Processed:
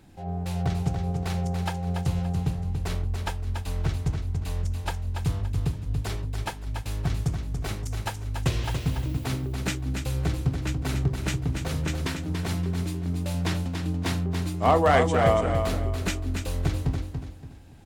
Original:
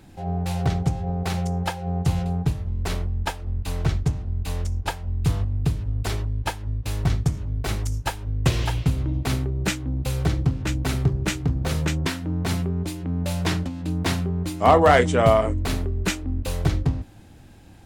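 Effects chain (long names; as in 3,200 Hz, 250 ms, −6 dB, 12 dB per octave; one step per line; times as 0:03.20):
0:08.63–0:09.24: background noise violet −51 dBFS
repeating echo 285 ms, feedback 32%, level −6.5 dB
level −5 dB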